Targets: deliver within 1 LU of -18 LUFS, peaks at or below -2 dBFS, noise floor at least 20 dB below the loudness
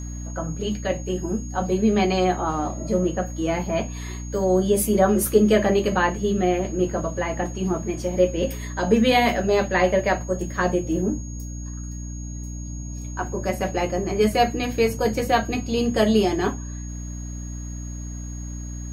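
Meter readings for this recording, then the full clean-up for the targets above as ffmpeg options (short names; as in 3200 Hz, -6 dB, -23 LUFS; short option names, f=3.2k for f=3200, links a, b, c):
hum 60 Hz; harmonics up to 300 Hz; hum level -30 dBFS; steady tone 6600 Hz; tone level -41 dBFS; loudness -22.5 LUFS; peak -4.5 dBFS; loudness target -18.0 LUFS
-> -af "bandreject=f=60:t=h:w=6,bandreject=f=120:t=h:w=6,bandreject=f=180:t=h:w=6,bandreject=f=240:t=h:w=6,bandreject=f=300:t=h:w=6"
-af "bandreject=f=6.6k:w=30"
-af "volume=4.5dB,alimiter=limit=-2dB:level=0:latency=1"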